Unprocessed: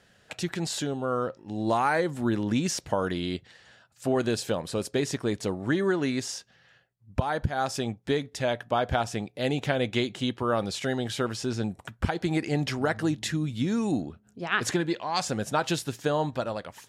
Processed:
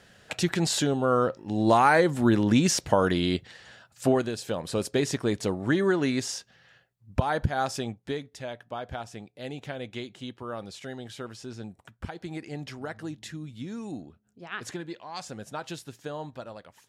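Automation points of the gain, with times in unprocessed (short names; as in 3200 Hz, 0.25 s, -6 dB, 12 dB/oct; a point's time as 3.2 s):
4.08 s +5 dB
4.32 s -6 dB
4.74 s +1.5 dB
7.52 s +1.5 dB
8.5 s -10 dB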